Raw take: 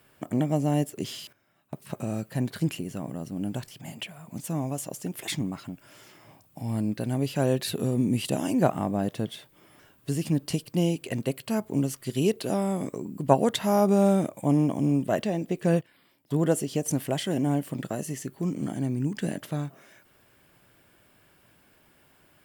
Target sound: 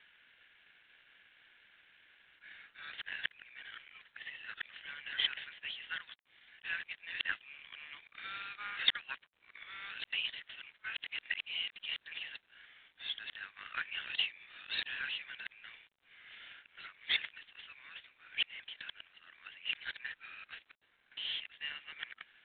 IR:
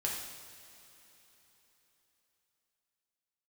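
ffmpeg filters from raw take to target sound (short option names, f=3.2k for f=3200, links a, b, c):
-af "areverse,asuperpass=centerf=3000:order=12:qfactor=0.69,volume=4.5dB" -ar 8000 -c:a adpcm_g726 -b:a 24k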